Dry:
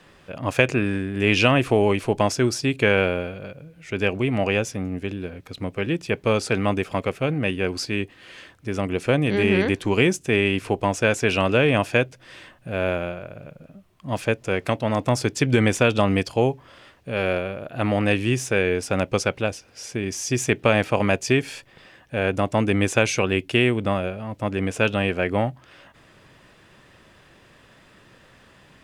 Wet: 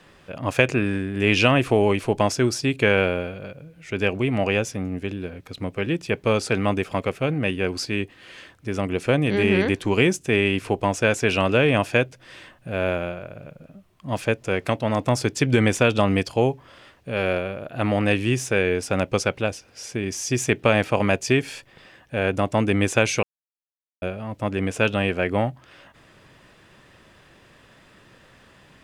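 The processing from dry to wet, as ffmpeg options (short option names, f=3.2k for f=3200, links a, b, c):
-filter_complex "[0:a]asplit=3[a][b][c];[a]atrim=end=23.23,asetpts=PTS-STARTPTS,afade=t=out:st=23.226:d=0.004:c=hsin[d];[b]atrim=start=23.23:end=24.02,asetpts=PTS-STARTPTS,volume=0[e];[c]atrim=start=24.02,asetpts=PTS-STARTPTS,afade=t=in:d=0.004:c=hsin[f];[d][e][f]concat=n=3:v=0:a=1"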